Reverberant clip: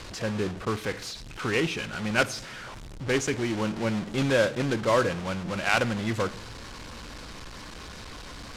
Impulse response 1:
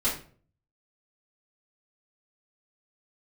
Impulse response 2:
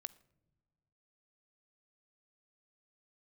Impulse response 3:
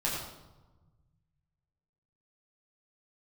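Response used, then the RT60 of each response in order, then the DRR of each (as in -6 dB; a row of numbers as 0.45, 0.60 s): 2; 0.45 s, not exponential, 1.2 s; -10.5, 16.5, -6.0 dB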